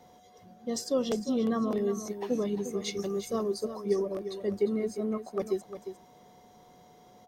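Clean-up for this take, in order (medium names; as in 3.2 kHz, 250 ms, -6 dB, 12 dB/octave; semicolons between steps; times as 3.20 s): band-stop 730 Hz, Q 30; inverse comb 352 ms -10.5 dB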